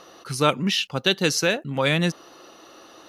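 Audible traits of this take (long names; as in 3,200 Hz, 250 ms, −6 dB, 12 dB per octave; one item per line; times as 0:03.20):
background noise floor −50 dBFS
spectral slope −4.0 dB per octave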